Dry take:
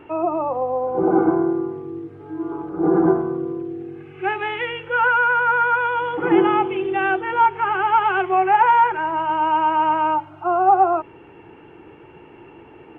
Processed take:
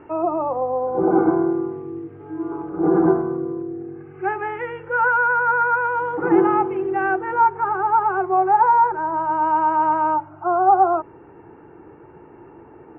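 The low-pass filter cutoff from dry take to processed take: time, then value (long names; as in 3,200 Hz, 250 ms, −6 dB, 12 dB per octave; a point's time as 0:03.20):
low-pass filter 24 dB per octave
0:00.96 2,000 Hz
0:01.42 2,600 Hz
0:02.93 2,600 Hz
0:03.66 1,700 Hz
0:07.28 1,700 Hz
0:07.81 1,300 Hz
0:08.91 1,300 Hz
0:09.47 1,700 Hz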